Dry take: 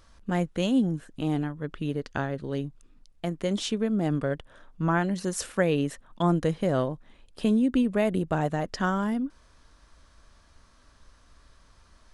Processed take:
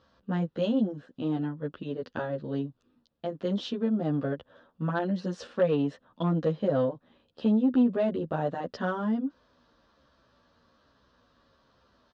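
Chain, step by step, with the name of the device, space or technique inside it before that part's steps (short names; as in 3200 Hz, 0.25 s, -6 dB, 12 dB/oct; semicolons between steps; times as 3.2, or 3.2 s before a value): barber-pole flanger into a guitar amplifier (endless flanger 11.2 ms -1.2 Hz; soft clip -19.5 dBFS, distortion -19 dB; speaker cabinet 110–4500 Hz, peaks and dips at 240 Hz +5 dB, 520 Hz +7 dB, 2200 Hz -10 dB)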